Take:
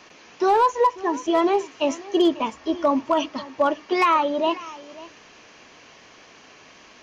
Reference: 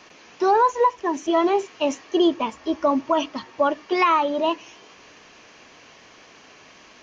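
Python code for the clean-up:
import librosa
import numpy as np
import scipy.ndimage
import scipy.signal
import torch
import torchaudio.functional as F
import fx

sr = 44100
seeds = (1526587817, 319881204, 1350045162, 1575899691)

y = fx.fix_declip(x, sr, threshold_db=-11.5)
y = fx.fix_echo_inverse(y, sr, delay_ms=543, level_db=-19.0)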